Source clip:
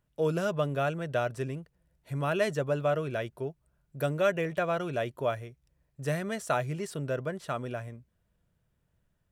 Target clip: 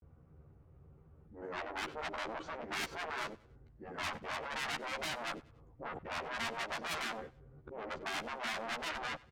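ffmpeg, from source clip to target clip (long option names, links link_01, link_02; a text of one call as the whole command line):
ffmpeg -i in.wav -filter_complex "[0:a]areverse,adynamicsmooth=sensitivity=1:basefreq=1200,aeval=exprs='(tanh(100*val(0)+0.2)-tanh(0.2))/100':channel_layout=same,highpass=frequency=100:poles=1,asetrate=35002,aresample=44100,atempo=1.25992,acompressor=threshold=-51dB:ratio=1.5,afftfilt=real='re*lt(hypot(re,im),0.00794)':imag='im*lt(hypot(re,im),0.00794)':win_size=1024:overlap=0.75,asplit=2[link_01][link_02];[link_02]adelay=13,volume=-3dB[link_03];[link_01][link_03]amix=inputs=2:normalize=0,aecho=1:1:95|190|285:0.0794|0.0294|0.0109,volume=17dB" out.wav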